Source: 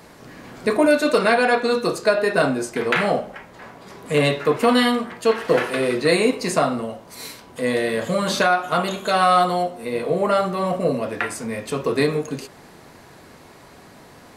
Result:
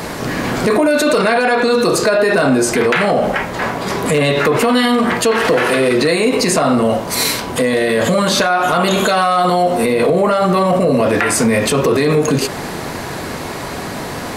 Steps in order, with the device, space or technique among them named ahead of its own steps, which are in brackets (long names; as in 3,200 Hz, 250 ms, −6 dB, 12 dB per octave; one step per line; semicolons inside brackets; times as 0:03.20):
loud club master (downward compressor 3 to 1, threshold −21 dBFS, peak gain reduction 8 dB; hard clipping −14 dBFS, distortion −30 dB; boost into a limiter +26 dB)
level −5 dB